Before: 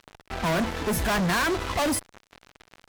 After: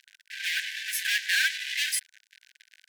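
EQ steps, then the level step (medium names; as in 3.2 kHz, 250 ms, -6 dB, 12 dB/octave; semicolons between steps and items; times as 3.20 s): brick-wall FIR high-pass 1.5 kHz; dynamic bell 2.9 kHz, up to +6 dB, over -42 dBFS, Q 0.92; 0.0 dB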